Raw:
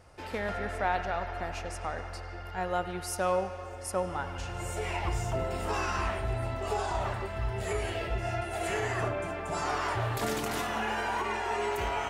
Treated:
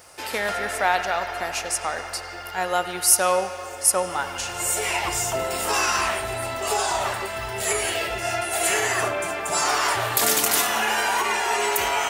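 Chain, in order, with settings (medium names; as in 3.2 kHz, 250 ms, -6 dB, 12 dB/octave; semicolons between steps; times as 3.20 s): RIAA curve recording; trim +8.5 dB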